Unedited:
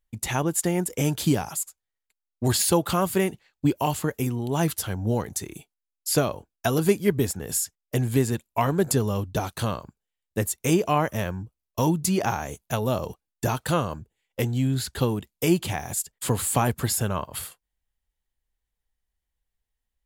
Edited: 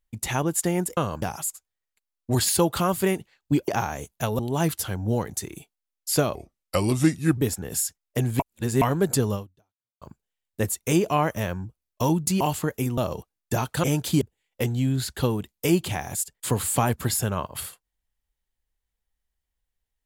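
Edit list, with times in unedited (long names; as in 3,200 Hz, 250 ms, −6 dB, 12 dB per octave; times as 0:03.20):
0:00.97–0:01.35: swap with 0:13.75–0:14.00
0:03.81–0:04.38: swap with 0:12.18–0:12.89
0:06.34–0:07.15: play speed 79%
0:08.17–0:08.59: reverse
0:09.12–0:09.79: fade out exponential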